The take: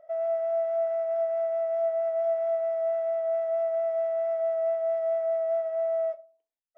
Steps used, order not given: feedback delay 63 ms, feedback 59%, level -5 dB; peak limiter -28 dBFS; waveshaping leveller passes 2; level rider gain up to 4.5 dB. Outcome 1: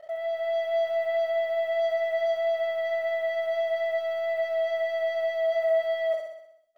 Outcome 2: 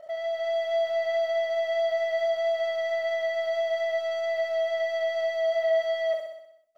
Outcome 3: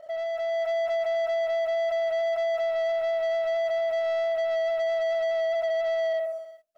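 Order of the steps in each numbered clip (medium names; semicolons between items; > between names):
waveshaping leveller > peak limiter > feedback delay > level rider; peak limiter > waveshaping leveller > feedback delay > level rider; feedback delay > peak limiter > waveshaping leveller > level rider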